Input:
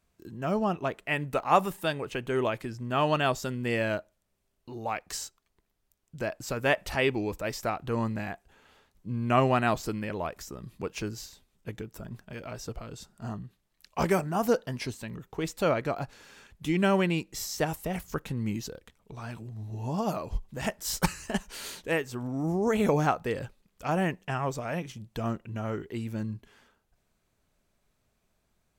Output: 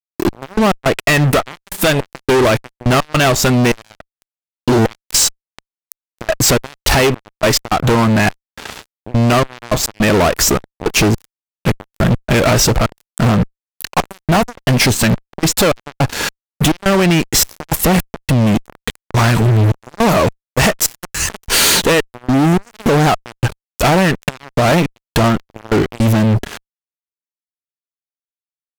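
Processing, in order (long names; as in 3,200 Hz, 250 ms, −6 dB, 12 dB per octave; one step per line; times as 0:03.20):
in parallel at −1.5 dB: brickwall limiter −18.5 dBFS, peak gain reduction 10.5 dB
on the sum: downward compressor 20 to 1, threshold −33 dBFS, peak gain reduction 20.5 dB
harmonic generator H 2 −12 dB, 4 −9 dB, 7 −36 dB, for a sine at −18 dBFS
gate pattern "xx..x.xxxx..xx.." 105 BPM −24 dB
fuzz pedal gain 45 dB, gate −53 dBFS
level +4 dB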